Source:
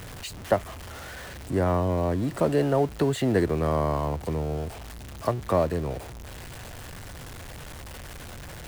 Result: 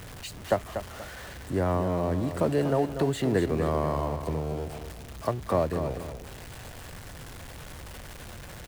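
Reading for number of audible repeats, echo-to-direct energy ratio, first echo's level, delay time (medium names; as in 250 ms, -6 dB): 2, -8.5 dB, -9.0 dB, 240 ms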